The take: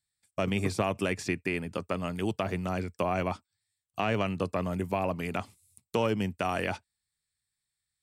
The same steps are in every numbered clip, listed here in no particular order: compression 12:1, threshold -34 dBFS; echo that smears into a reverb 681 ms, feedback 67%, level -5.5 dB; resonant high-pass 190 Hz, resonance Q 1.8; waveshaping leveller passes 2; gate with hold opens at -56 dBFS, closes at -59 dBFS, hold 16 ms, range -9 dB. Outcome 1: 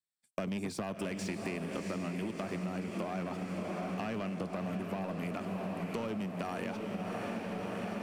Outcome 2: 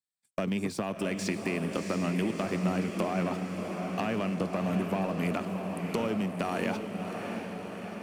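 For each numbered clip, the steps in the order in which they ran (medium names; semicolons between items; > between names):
resonant high-pass > gate with hold > waveshaping leveller > echo that smears into a reverb > compression; gate with hold > resonant high-pass > compression > waveshaping leveller > echo that smears into a reverb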